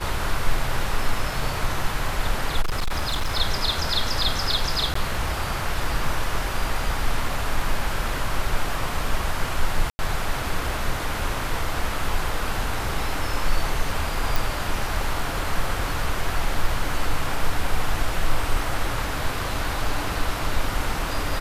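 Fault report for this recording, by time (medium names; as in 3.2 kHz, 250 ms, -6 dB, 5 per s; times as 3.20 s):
2.61–3.38 s: clipped -19.5 dBFS
4.94–4.95 s: dropout 14 ms
9.90–9.99 s: dropout 90 ms
14.36 s: pop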